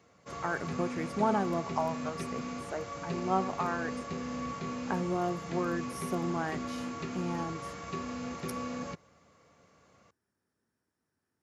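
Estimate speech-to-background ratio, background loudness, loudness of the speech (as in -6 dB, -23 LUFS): 3.5 dB, -38.5 LUFS, -35.0 LUFS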